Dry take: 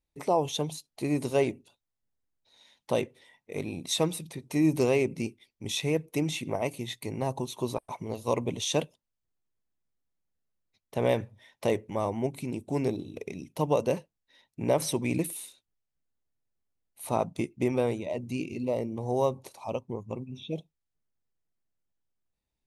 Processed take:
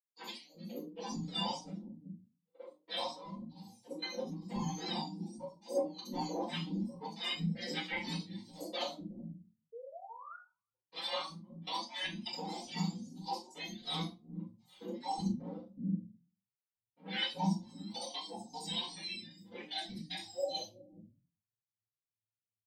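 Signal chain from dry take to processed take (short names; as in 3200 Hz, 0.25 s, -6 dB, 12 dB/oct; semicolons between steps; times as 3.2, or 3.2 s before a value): spectrum mirrored in octaves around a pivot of 1400 Hz; gate -55 dBFS, range -35 dB; ten-band EQ 125 Hz +10 dB, 250 Hz +4 dB, 1000 Hz +9 dB, 4000 Hz +9 dB; reverse; compressor 12:1, threshold -34 dBFS, peak gain reduction 20 dB; reverse; step gate "xxx....x.xx..xxx" 153 bpm -24 dB; treble ducked by the level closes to 3000 Hz, closed at -36.5 dBFS; painted sound rise, 9.72–10.37, 440–1500 Hz -54 dBFS; three bands offset in time mids, highs, lows 70/370 ms, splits 290/4800 Hz; shoebox room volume 120 m³, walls furnished, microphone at 4.8 m; endless flanger 5.2 ms +2.6 Hz; gain -2 dB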